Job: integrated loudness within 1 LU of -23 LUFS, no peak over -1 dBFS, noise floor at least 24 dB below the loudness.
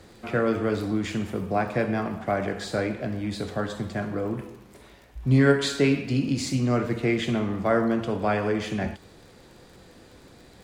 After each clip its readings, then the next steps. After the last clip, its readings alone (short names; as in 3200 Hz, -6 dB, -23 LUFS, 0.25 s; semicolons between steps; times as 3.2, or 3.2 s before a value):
ticks 30/s; loudness -26.0 LUFS; peak -7.5 dBFS; loudness target -23.0 LUFS
-> de-click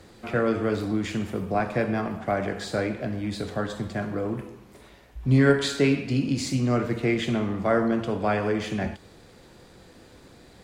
ticks 0.094/s; loudness -26.0 LUFS; peak -7.5 dBFS; loudness target -23.0 LUFS
-> gain +3 dB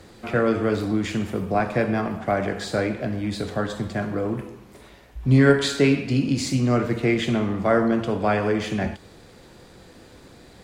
loudness -23.0 LUFS; peak -4.5 dBFS; noise floor -49 dBFS